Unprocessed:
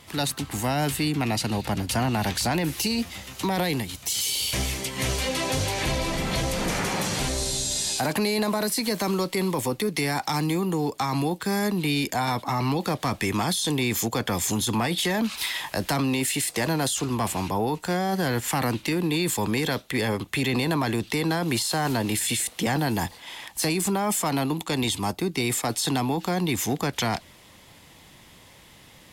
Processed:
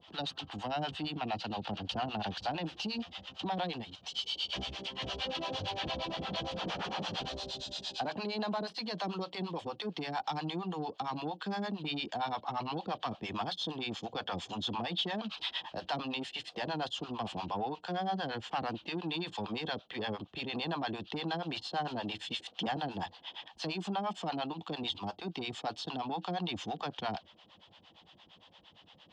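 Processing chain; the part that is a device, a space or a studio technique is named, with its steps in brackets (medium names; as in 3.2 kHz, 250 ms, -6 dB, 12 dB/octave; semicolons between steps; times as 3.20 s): guitar amplifier with harmonic tremolo (harmonic tremolo 8.7 Hz, depth 100%, crossover 560 Hz; saturation -22.5 dBFS, distortion -18 dB; cabinet simulation 110–4400 Hz, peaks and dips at 130 Hz -9 dB, 260 Hz -4 dB, 390 Hz -3 dB, 750 Hz +5 dB, 2.1 kHz -10 dB, 3.1 kHz +8 dB); trim -4 dB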